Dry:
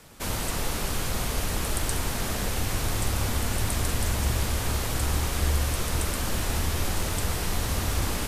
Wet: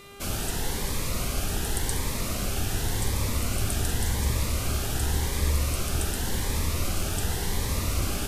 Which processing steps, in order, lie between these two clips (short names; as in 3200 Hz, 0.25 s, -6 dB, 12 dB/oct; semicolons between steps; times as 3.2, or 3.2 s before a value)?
buzz 400 Hz, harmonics 10, -45 dBFS -4 dB/oct; cascading phaser rising 0.89 Hz